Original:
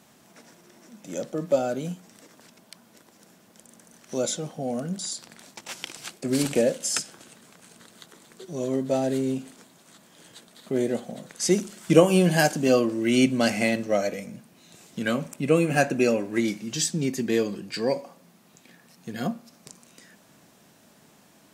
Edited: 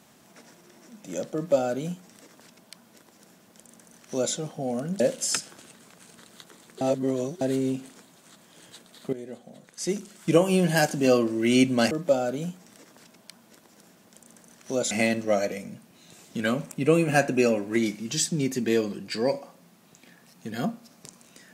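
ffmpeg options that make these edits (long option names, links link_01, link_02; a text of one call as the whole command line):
ffmpeg -i in.wav -filter_complex "[0:a]asplit=7[link_01][link_02][link_03][link_04][link_05][link_06][link_07];[link_01]atrim=end=5.002[link_08];[link_02]atrim=start=6.618:end=8.432[link_09];[link_03]atrim=start=8.428:end=9.032,asetpts=PTS-STARTPTS,areverse[link_10];[link_04]atrim=start=9.028:end=10.75,asetpts=PTS-STARTPTS,afade=type=out:start_time=1.718:duration=0.004:curve=hsin:silence=0.158489[link_11];[link_05]atrim=start=10.75:end=13.532,asetpts=PTS-STARTPTS,afade=type=in:duration=2.07:silence=0.158489[link_12];[link_06]atrim=start=1.338:end=4.342[link_13];[link_07]atrim=start=13.528[link_14];[link_08][link_09]acrossfade=duration=0.004:curve1=hsin:curve2=hsin[link_15];[link_15][link_10]acrossfade=duration=0.004:curve1=hsin:curve2=hsin[link_16];[link_11][link_12]concat=n=2:v=0:a=1[link_17];[link_16][link_17]acrossfade=duration=0.004:curve1=hsin:curve2=hsin[link_18];[link_18][link_13]acrossfade=duration=0.004:curve1=hsin:curve2=hsin[link_19];[link_19][link_14]acrossfade=duration=0.004:curve1=hsin:curve2=hsin" out.wav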